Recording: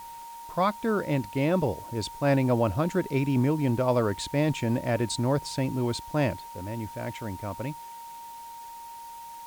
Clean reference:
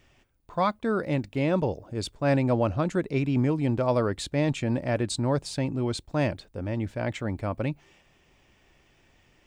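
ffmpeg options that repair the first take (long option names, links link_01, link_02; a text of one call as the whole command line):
ffmpeg -i in.wav -af "bandreject=frequency=930:width=30,afwtdn=0.0025,asetnsamples=nb_out_samples=441:pad=0,asendcmd='6.37 volume volume 5dB',volume=0dB" out.wav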